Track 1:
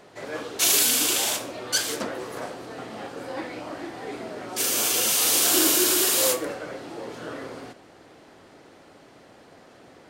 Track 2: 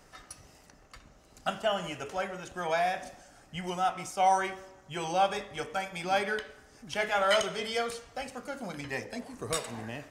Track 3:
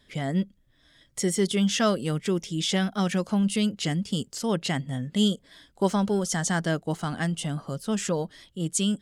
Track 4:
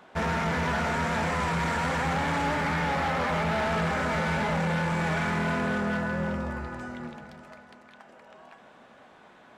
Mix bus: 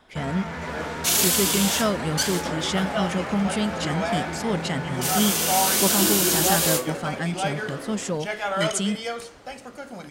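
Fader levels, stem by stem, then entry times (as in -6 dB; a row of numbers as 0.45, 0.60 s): -1.0, +0.5, -0.5, -5.5 dB; 0.45, 1.30, 0.00, 0.00 s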